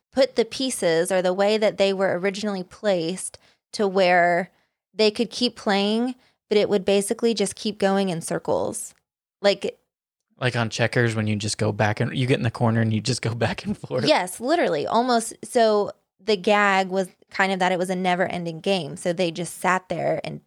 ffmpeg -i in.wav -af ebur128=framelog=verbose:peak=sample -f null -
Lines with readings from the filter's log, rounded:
Integrated loudness:
  I:         -22.7 LUFS
  Threshold: -32.9 LUFS
Loudness range:
  LRA:         3.3 LU
  Threshold: -43.0 LUFS
  LRA low:   -25.0 LUFS
  LRA high:  -21.8 LUFS
Sample peak:
  Peak:       -4.6 dBFS